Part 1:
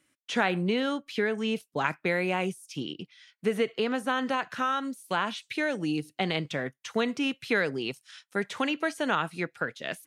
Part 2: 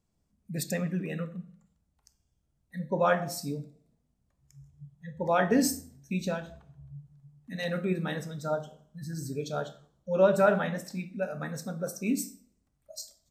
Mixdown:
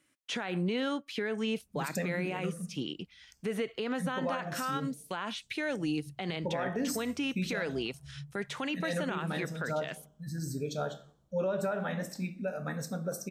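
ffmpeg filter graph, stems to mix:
-filter_complex "[0:a]volume=-1.5dB[a];[1:a]alimiter=limit=-20dB:level=0:latency=1:release=349,adelay=1250,volume=0dB[b];[a][b]amix=inputs=2:normalize=0,alimiter=limit=-24dB:level=0:latency=1:release=67"

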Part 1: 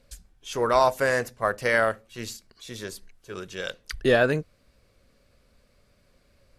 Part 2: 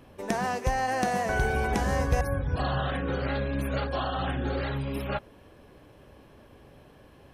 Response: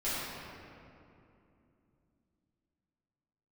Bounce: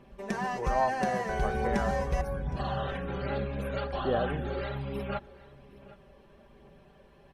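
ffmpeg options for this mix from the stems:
-filter_complex "[0:a]lowpass=1.1k,volume=-10dB[a];[1:a]highshelf=f=6.4k:g=-10,aecho=1:1:5.1:0.76,volume=-5.5dB,asplit=2[b][c];[c]volume=-20dB,aecho=0:1:765:1[d];[a][b][d]amix=inputs=3:normalize=0,aphaser=in_gain=1:out_gain=1:delay=2.3:decay=0.23:speed=1.2:type=triangular"

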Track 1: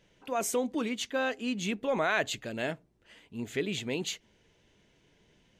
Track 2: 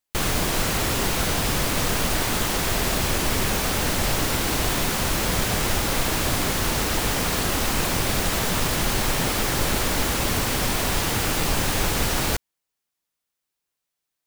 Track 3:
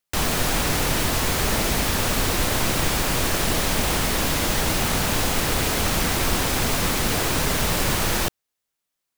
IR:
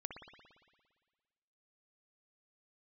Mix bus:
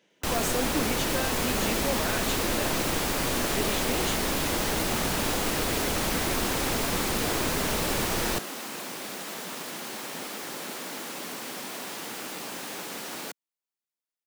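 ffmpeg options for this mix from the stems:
-filter_complex "[0:a]volume=0.5dB[a];[1:a]adelay=950,volume=-12dB[b];[2:a]acrossover=split=240|3000[c][d][e];[c]acompressor=threshold=-45dB:ratio=2.5[f];[f][d][e]amix=inputs=3:normalize=0,lowshelf=f=300:g=11.5,adelay=100,volume=-6dB[g];[a][b]amix=inputs=2:normalize=0,highpass=f=200:w=0.5412,highpass=f=200:w=1.3066,alimiter=limit=-22dB:level=0:latency=1,volume=0dB[h];[g][h]amix=inputs=2:normalize=0"

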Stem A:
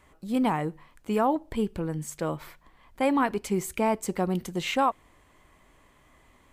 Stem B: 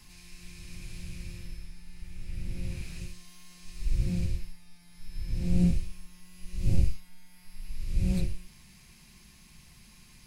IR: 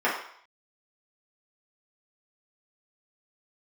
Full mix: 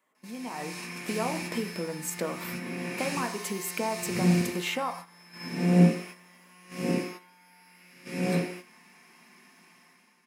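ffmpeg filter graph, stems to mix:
-filter_complex "[0:a]highshelf=f=11k:g=10.5,acompressor=threshold=-34dB:ratio=10,volume=-7dB,asplit=3[a][b][c];[b]volume=-19dB[d];[1:a]equalizer=f=3.4k:t=o:w=0.52:g=-4.5,adelay=150,volume=-1.5dB,asplit=2[e][f];[f]volume=-9.5dB[g];[c]apad=whole_len=459514[h];[e][h]sidechaingate=range=-13dB:threshold=-58dB:ratio=16:detection=peak[i];[2:a]atrim=start_sample=2205[j];[d][g]amix=inputs=2:normalize=0[k];[k][j]afir=irnorm=-1:irlink=0[l];[a][i][l]amix=inputs=3:normalize=0,highpass=f=190:w=0.5412,highpass=f=190:w=1.3066,agate=range=-9dB:threshold=-53dB:ratio=16:detection=peak,dynaudnorm=f=110:g=11:m=11.5dB"

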